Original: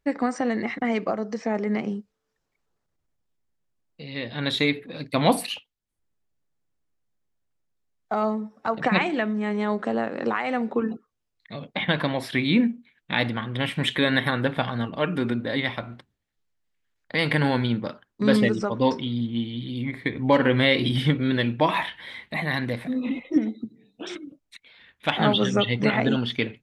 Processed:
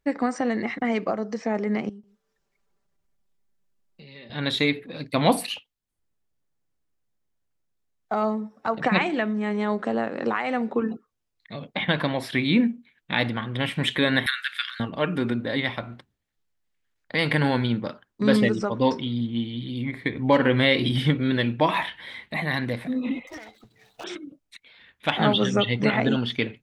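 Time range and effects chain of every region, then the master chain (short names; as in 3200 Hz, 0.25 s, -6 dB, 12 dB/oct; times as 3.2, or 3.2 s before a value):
1.89–4.3 comb 5.1 ms, depth 69% + compressor 3:1, threshold -46 dBFS + echo 0.145 s -17.5 dB
14.26–14.8 steep high-pass 1400 Hz 48 dB/oct + high shelf 2800 Hz +9.5 dB
23.27–24.04 median filter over 15 samples + EQ curve 100 Hz 0 dB, 240 Hz -29 dB, 790 Hz +6 dB + three-band squash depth 100%
whole clip: dry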